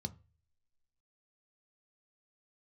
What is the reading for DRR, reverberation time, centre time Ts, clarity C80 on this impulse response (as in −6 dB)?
9.0 dB, 0.35 s, 3 ms, 27.0 dB